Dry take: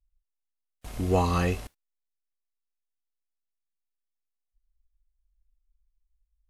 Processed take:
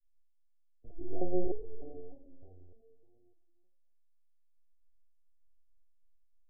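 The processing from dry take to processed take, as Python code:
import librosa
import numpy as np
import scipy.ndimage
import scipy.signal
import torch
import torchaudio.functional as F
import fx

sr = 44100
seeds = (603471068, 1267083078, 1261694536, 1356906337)

p1 = fx.reverse_delay_fb(x, sr, ms=155, feedback_pct=66, wet_db=-9)
p2 = scipy.signal.sosfilt(scipy.signal.ellip(4, 1.0, 40, 760.0, 'lowpass', fs=sr, output='sos'), p1)
p3 = fx.low_shelf(p2, sr, hz=280.0, db=4.0)
p4 = p3 + fx.echo_heads(p3, sr, ms=111, heads='all three', feedback_pct=50, wet_db=-17, dry=0)
p5 = fx.lpc_vocoder(p4, sr, seeds[0], excitation='pitch_kept', order=10)
p6 = fx.fixed_phaser(p5, sr, hz=400.0, stages=4)
p7 = fx.resonator_held(p6, sr, hz=3.3, low_hz=95.0, high_hz=430.0)
y = p7 * librosa.db_to_amplitude(5.5)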